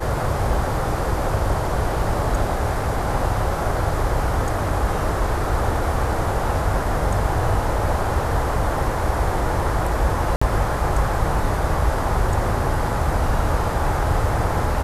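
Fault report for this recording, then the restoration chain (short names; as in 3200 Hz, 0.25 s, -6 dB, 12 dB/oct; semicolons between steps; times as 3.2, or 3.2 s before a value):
0.54 gap 2.8 ms
10.36–10.41 gap 55 ms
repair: interpolate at 0.54, 2.8 ms; interpolate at 10.36, 55 ms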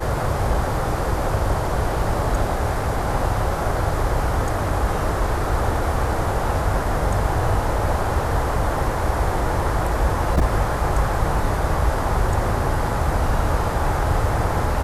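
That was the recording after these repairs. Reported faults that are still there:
none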